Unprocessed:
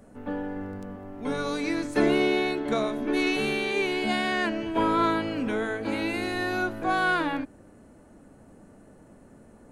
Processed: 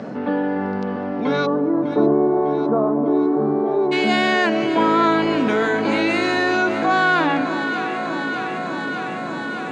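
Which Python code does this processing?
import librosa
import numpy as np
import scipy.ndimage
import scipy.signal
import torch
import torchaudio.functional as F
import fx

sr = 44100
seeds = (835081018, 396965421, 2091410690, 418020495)

y = fx.ellip_bandpass(x, sr, low_hz=140.0, high_hz=fx.steps((0.0, 4900.0), (1.45, 1100.0), (3.91, 7100.0)), order=3, stop_db=40)
y = fx.echo_alternate(y, sr, ms=301, hz=1100.0, feedback_pct=84, wet_db=-12.0)
y = fx.env_flatten(y, sr, amount_pct=50)
y = F.gain(torch.from_numpy(y), 5.5).numpy()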